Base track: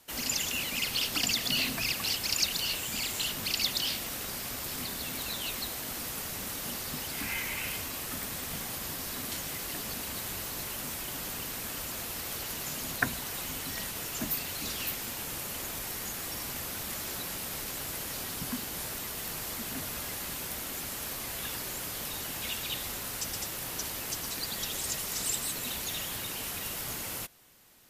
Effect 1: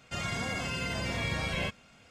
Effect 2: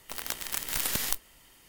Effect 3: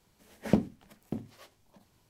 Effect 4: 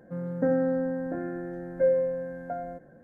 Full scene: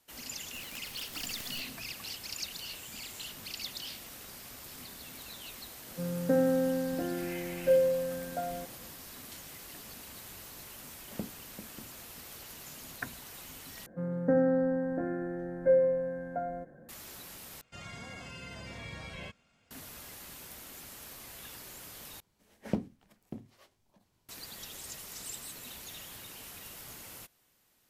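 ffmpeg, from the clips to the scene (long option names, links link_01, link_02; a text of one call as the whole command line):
ffmpeg -i bed.wav -i cue0.wav -i cue1.wav -i cue2.wav -i cue3.wav -filter_complex "[4:a]asplit=2[link_01][link_02];[3:a]asplit=2[link_03][link_04];[0:a]volume=-10.5dB[link_05];[2:a]asoftclip=type=tanh:threshold=-21.5dB[link_06];[link_03]aecho=1:1:394:0.282[link_07];[link_05]asplit=4[link_08][link_09][link_10][link_11];[link_08]atrim=end=13.864[link_12];[link_02]atrim=end=3.03,asetpts=PTS-STARTPTS,volume=-1dB[link_13];[link_09]atrim=start=16.886:end=17.614[link_14];[1:a]atrim=end=2.1,asetpts=PTS-STARTPTS,volume=-11.5dB[link_15];[link_10]atrim=start=19.706:end=22.204[link_16];[link_04]atrim=end=2.09,asetpts=PTS-STARTPTS,volume=-7dB[link_17];[link_11]atrim=start=24.286[link_18];[link_06]atrim=end=1.68,asetpts=PTS-STARTPTS,volume=-13dB,afade=type=in:duration=0.004:curve=hsin,afade=type=out:start_time=1.676:duration=0.004:curve=hsin,adelay=450[link_19];[link_01]atrim=end=3.03,asetpts=PTS-STARTPTS,volume=-1.5dB,afade=type=in:duration=0.004:curve=hsin,afade=type=out:start_time=3.026:duration=0.004:curve=hsin,adelay=5870[link_20];[link_07]atrim=end=2.09,asetpts=PTS-STARTPTS,volume=-14.5dB,afade=type=in:duration=0.004:curve=hsin,afade=type=out:start_time=2.086:duration=0.004:curve=hsin,adelay=470106S[link_21];[link_12][link_13]acrossfade=duration=0.004:curve1=hsin:curve2=hsin[link_22];[link_22][link_14]acrossfade=duration=0.004:curve1=hsin:curve2=hsin[link_23];[link_23][link_15]acrossfade=duration=0.004:curve1=hsin:curve2=hsin[link_24];[link_24][link_16]acrossfade=duration=0.004:curve1=hsin:curve2=hsin[link_25];[link_25][link_17]acrossfade=duration=0.004:curve1=hsin:curve2=hsin[link_26];[link_26][link_18]acrossfade=duration=0.004:curve1=hsin:curve2=hsin[link_27];[link_27][link_19][link_20][link_21]amix=inputs=4:normalize=0" out.wav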